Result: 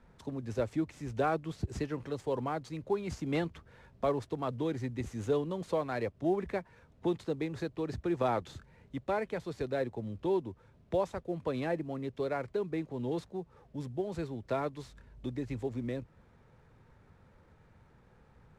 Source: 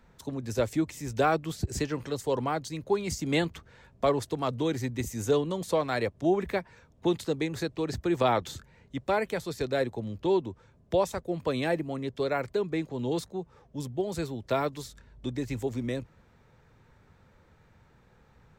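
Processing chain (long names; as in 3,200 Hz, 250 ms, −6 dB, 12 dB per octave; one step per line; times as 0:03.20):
variable-slope delta modulation 64 kbit/s
in parallel at −2.5 dB: downward compressor, threshold −41 dBFS, peak gain reduction 19.5 dB
on the sum: low-pass filter 1,900 Hz 6 dB per octave
level −5.5 dB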